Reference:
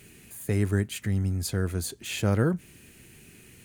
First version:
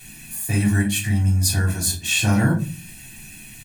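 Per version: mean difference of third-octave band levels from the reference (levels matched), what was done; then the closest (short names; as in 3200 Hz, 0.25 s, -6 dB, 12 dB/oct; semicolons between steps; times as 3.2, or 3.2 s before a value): 6.0 dB: high shelf 2000 Hz +9.5 dB; comb 1.2 ms, depth 84%; shoebox room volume 150 m³, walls furnished, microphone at 3.4 m; gain -4 dB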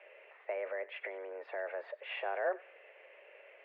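16.5 dB: limiter -22.5 dBFS, peak gain reduction 11 dB; thinning echo 94 ms, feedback 47%, high-pass 840 Hz, level -17.5 dB; mistuned SSB +190 Hz 330–2200 Hz; gain +2.5 dB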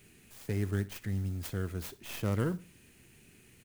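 3.0 dB: tracing distortion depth 0.46 ms; modulation noise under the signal 28 dB; feedback echo 61 ms, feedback 35%, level -18.5 dB; gain -7.5 dB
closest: third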